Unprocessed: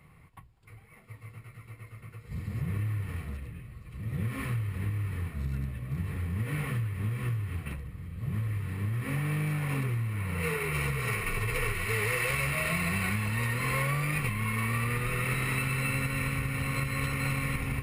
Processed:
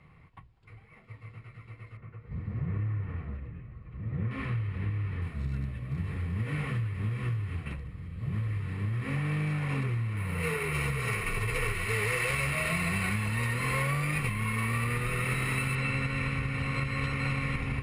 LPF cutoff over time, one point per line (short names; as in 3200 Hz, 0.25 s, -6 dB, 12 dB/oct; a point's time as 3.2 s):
4600 Hz
from 1.97 s 1700 Hz
from 4.31 s 3700 Hz
from 5.22 s 6600 Hz
from 10.17 s 12000 Hz
from 15.75 s 5500 Hz